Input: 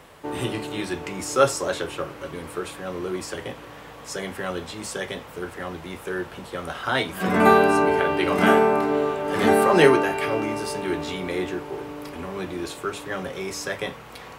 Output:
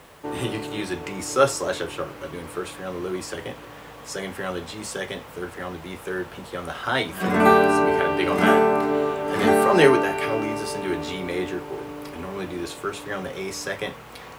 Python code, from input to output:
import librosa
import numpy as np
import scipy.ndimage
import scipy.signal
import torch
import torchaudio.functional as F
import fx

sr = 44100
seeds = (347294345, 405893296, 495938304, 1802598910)

y = fx.dmg_noise_colour(x, sr, seeds[0], colour='white', level_db=-62.0)